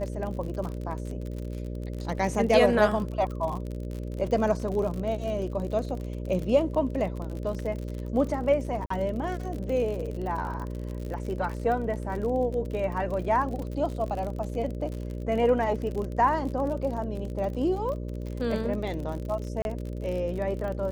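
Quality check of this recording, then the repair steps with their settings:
mains buzz 60 Hz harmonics 10 −34 dBFS
surface crackle 47 per second −33 dBFS
0:08.86–0:08.90: drop-out 44 ms
0:19.62–0:19.65: drop-out 31 ms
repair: click removal
hum removal 60 Hz, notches 10
repair the gap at 0:08.86, 44 ms
repair the gap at 0:19.62, 31 ms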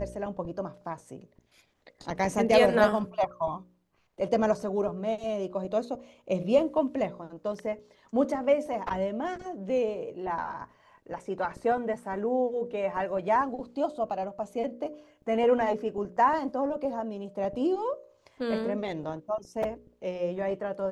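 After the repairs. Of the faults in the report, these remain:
none of them is left

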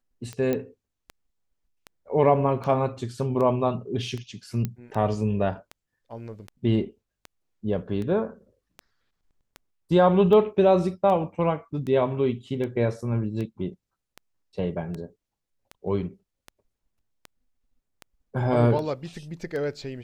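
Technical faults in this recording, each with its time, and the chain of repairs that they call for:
scratch tick 78 rpm −22 dBFS
0:00.53: click −14 dBFS
0:04.65: click −15 dBFS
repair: click removal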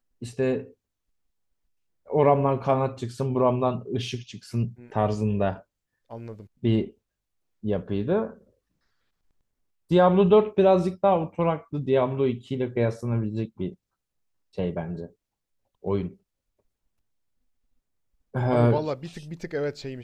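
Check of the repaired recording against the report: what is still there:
none of them is left

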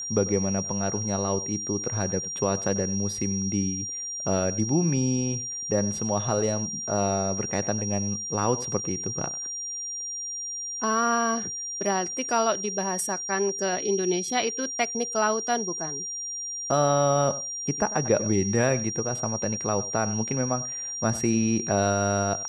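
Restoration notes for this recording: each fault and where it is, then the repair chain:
whistle 5,700 Hz −31 dBFS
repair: notch filter 5,700 Hz, Q 30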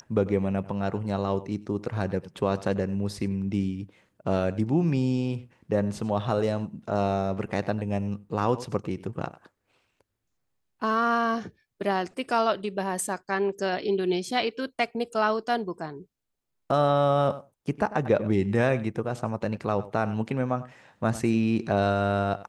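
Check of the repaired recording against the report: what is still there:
none of them is left

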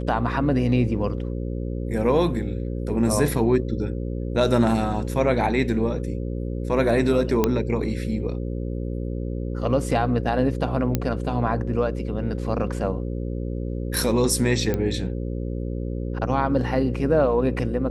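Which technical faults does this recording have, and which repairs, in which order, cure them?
mains buzz 60 Hz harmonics 9 −28 dBFS
0:07.44: click −6 dBFS
0:10.95: click −8 dBFS
0:14.74: click −12 dBFS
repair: click removal
hum removal 60 Hz, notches 9

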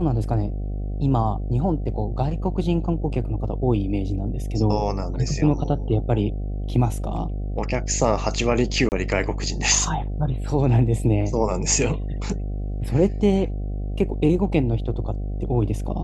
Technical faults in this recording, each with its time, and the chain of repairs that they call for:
mains buzz 50 Hz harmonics 15 −27 dBFS
0:08.89–0:08.92: drop-out 29 ms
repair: hum removal 50 Hz, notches 15
repair the gap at 0:08.89, 29 ms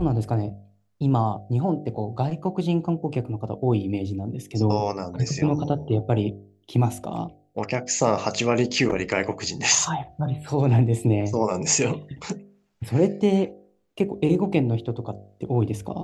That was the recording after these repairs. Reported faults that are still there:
none of them is left

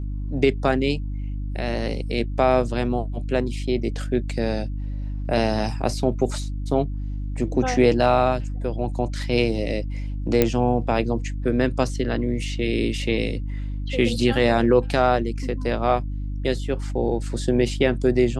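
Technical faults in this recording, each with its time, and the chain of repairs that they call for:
mains hum 50 Hz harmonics 6 −28 dBFS
0:10.42: click −4 dBFS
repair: click removal
hum removal 50 Hz, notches 6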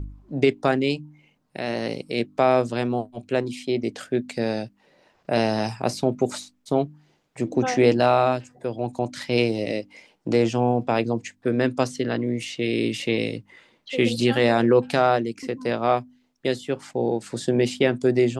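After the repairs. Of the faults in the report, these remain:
none of them is left

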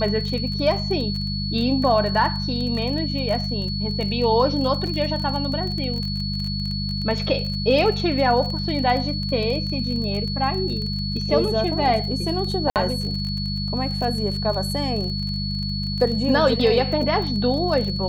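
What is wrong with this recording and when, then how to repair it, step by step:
surface crackle 24 per second −27 dBFS
mains hum 50 Hz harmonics 4 −27 dBFS
whistle 4,400 Hz −29 dBFS
0:04.87: drop-out 4.3 ms
0:12.70–0:12.76: drop-out 58 ms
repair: click removal
notch filter 4,400 Hz, Q 30
hum removal 50 Hz, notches 4
repair the gap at 0:04.87, 4.3 ms
repair the gap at 0:12.70, 58 ms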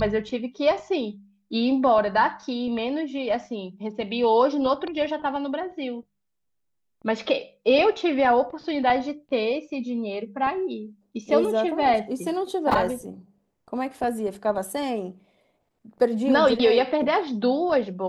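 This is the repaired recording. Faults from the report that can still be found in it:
none of them is left

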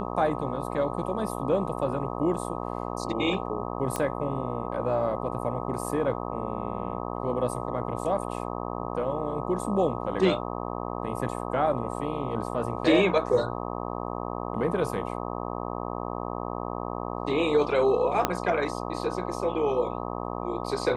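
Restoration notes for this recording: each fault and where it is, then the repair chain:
mains buzz 60 Hz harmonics 21 −33 dBFS
0:03.96: click −14 dBFS
0:18.25: click −7 dBFS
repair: click removal
hum removal 60 Hz, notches 21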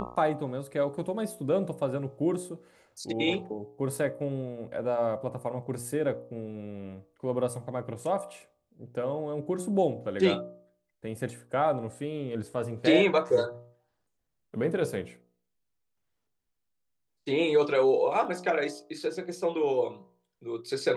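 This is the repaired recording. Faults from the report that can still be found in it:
0:18.25: click

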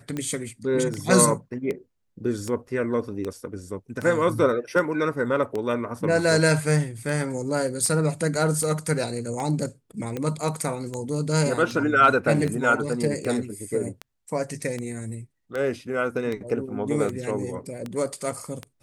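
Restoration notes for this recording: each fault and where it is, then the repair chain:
scratch tick 78 rpm −17 dBFS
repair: click removal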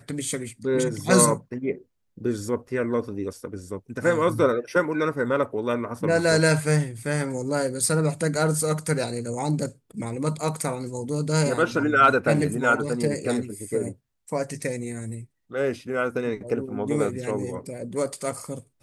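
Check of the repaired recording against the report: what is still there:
none of them is left

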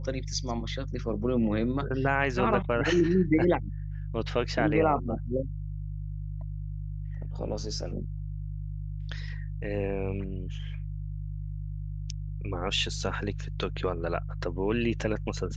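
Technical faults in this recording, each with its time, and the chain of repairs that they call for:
mains hum 50 Hz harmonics 3 −35 dBFS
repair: hum removal 50 Hz, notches 3

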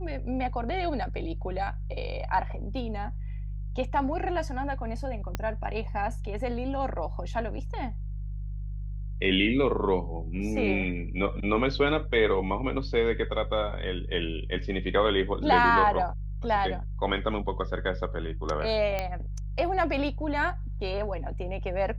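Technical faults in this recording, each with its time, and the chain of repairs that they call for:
mains hum 50 Hz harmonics 3 −34 dBFS
0:05.35: click −15 dBFS
0:18.99: click −15 dBFS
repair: click removal
hum removal 50 Hz, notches 3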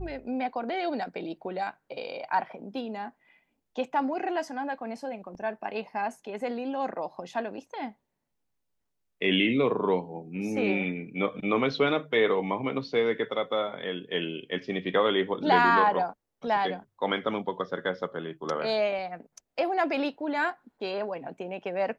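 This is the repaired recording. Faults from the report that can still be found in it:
0:05.35: click

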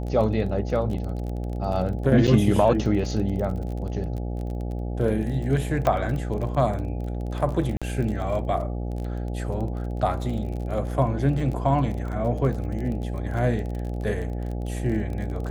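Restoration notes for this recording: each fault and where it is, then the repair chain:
mains buzz 60 Hz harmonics 14 −29 dBFS
surface crackle 27 per second −31 dBFS
0:02.27–0:02.28: drop-out 6.6 ms
0:05.87: click −11 dBFS
0:07.77–0:07.82: drop-out 46 ms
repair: click removal
hum removal 60 Hz, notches 14
repair the gap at 0:02.27, 6.6 ms
repair the gap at 0:07.77, 46 ms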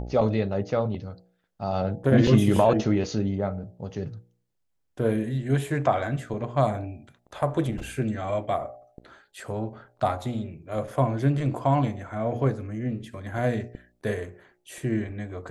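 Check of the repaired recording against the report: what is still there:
none of them is left

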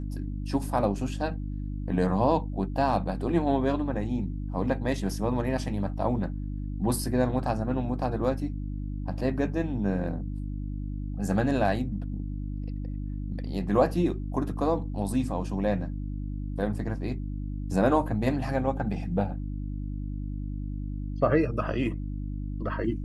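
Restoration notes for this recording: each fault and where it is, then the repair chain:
mains hum 50 Hz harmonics 6 −33 dBFS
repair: hum removal 50 Hz, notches 6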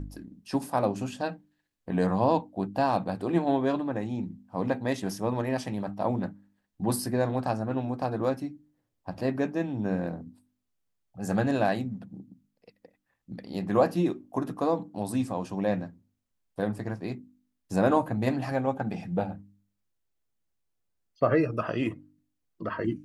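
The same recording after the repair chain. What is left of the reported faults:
none of them is left

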